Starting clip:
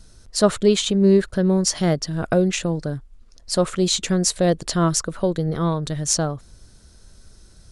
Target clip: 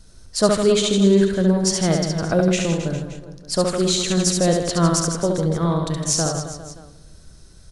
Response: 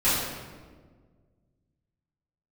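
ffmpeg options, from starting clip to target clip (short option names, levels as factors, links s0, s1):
-filter_complex "[0:a]aecho=1:1:70|157.5|266.9|403.6|574.5:0.631|0.398|0.251|0.158|0.1,asplit=2[s0][s1];[1:a]atrim=start_sample=2205,asetrate=36162,aresample=44100[s2];[s1][s2]afir=irnorm=-1:irlink=0,volume=0.0251[s3];[s0][s3]amix=inputs=2:normalize=0,volume=0.891"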